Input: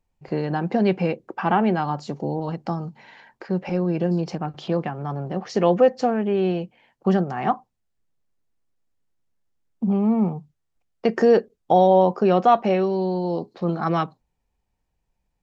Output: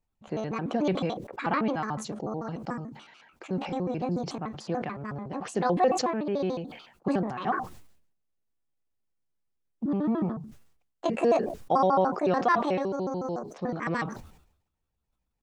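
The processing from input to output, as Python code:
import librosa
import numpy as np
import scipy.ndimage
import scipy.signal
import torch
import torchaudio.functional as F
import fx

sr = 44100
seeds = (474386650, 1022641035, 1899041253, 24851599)

y = fx.pitch_trill(x, sr, semitones=6.5, every_ms=73)
y = fx.sustainer(y, sr, db_per_s=78.0)
y = y * 10.0 ** (-7.0 / 20.0)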